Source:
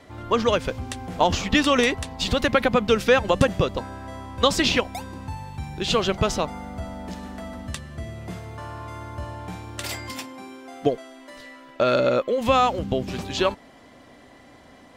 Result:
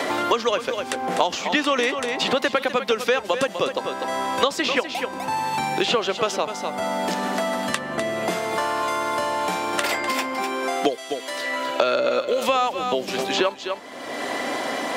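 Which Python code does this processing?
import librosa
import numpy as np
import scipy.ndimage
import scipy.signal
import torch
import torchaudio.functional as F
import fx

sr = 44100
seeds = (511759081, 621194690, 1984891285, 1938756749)

p1 = scipy.signal.sosfilt(scipy.signal.butter(2, 360.0, 'highpass', fs=sr, output='sos'), x)
p2 = p1 + fx.echo_single(p1, sr, ms=250, db=-11.5, dry=0)
p3 = fx.band_squash(p2, sr, depth_pct=100)
y = p3 * librosa.db_to_amplitude(1.0)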